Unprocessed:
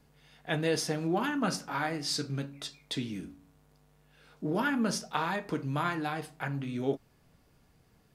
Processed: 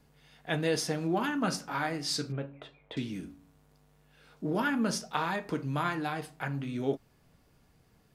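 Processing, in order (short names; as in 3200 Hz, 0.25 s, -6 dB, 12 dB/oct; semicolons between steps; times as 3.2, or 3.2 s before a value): 2.32–2.97 EQ curve 120 Hz 0 dB, 210 Hz -7 dB, 530 Hz +6 dB, 1300 Hz -1 dB, 3100 Hz -5 dB, 5000 Hz -27 dB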